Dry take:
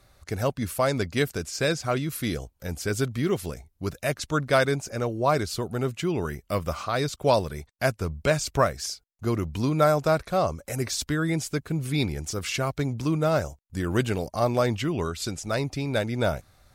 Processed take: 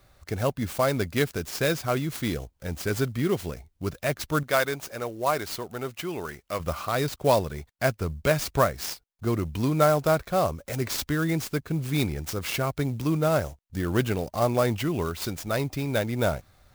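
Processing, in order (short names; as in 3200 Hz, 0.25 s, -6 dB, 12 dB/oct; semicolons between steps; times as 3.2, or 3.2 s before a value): 4.43–6.6 low shelf 330 Hz -12 dB; clock jitter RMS 0.027 ms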